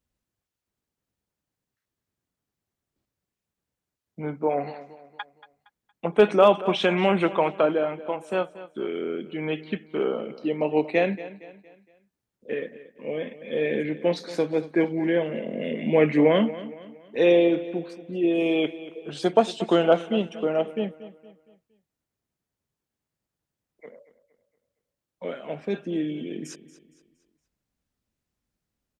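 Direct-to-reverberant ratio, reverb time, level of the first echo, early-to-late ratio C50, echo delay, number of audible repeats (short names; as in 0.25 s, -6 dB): none, none, -16.0 dB, none, 0.232 s, 3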